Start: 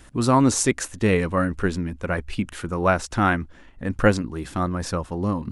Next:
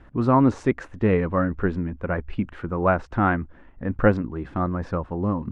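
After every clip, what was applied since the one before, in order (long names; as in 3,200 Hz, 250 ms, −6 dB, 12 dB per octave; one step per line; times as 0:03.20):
low-pass filter 1,600 Hz 12 dB per octave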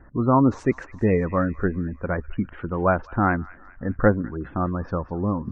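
gate on every frequency bin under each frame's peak −30 dB strong
delay with a high-pass on its return 203 ms, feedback 56%, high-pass 2,000 Hz, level −13.5 dB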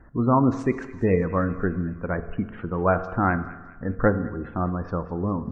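convolution reverb RT60 1.2 s, pre-delay 3 ms, DRR 10.5 dB
level −1.5 dB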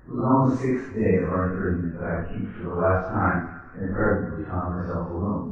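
random phases in long frames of 200 ms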